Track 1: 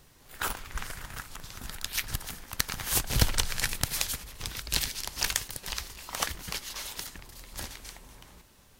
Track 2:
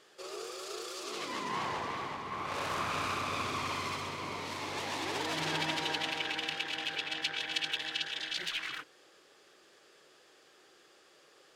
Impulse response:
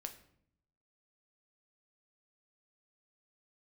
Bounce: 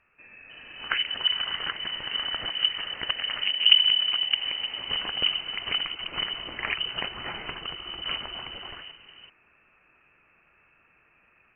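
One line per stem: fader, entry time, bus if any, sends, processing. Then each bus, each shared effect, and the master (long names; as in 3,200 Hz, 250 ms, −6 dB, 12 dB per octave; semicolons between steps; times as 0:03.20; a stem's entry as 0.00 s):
+3.0 dB, 0.50 s, no send, treble cut that deepens with the level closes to 790 Hz, closed at −29.5 dBFS
−5.0 dB, 0.00 s, no send, brickwall limiter −27.5 dBFS, peak gain reduction 11.5 dB; downward compressor 4 to 1, threshold −42 dBFS, peak gain reduction 8 dB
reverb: not used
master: voice inversion scrambler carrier 3,000 Hz; automatic gain control gain up to 5.5 dB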